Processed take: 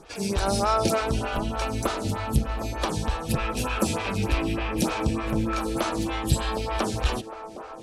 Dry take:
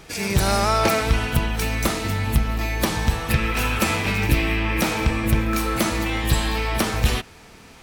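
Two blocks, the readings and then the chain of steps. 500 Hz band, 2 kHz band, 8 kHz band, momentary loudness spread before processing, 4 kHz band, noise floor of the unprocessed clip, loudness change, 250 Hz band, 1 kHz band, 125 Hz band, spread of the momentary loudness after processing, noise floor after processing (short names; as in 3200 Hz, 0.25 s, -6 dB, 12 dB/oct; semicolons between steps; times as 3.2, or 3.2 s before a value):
-2.0 dB, -9.0 dB, -5.0 dB, 4 LU, -6.0 dB, -46 dBFS, -5.0 dB, -3.0 dB, -3.0 dB, -5.5 dB, 5 LU, -39 dBFS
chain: LPF 11000 Hz 24 dB/oct; bell 2000 Hz -9 dB 0.55 oct; on a send: band-limited delay 0.759 s, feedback 52%, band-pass 790 Hz, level -9 dB; on the sum: photocell phaser 3.3 Hz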